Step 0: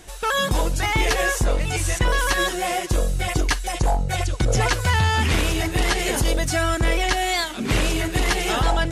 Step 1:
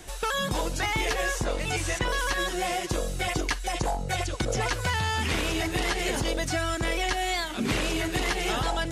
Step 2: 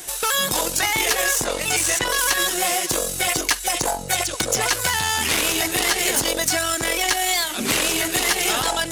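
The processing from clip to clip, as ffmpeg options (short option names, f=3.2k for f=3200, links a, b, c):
-filter_complex "[0:a]acrossover=split=190|3300|6900[a][b][c][d];[a]acompressor=threshold=-32dB:ratio=4[e];[b]acompressor=threshold=-27dB:ratio=4[f];[c]acompressor=threshold=-37dB:ratio=4[g];[d]acompressor=threshold=-45dB:ratio=4[h];[e][f][g][h]amix=inputs=4:normalize=0"
-af "aeval=exprs='0.224*(cos(1*acos(clip(val(0)/0.224,-1,1)))-cos(1*PI/2))+0.0251*(cos(4*acos(clip(val(0)/0.224,-1,1)))-cos(4*PI/2))':c=same,aemphasis=mode=production:type=bsi,volume=5.5dB"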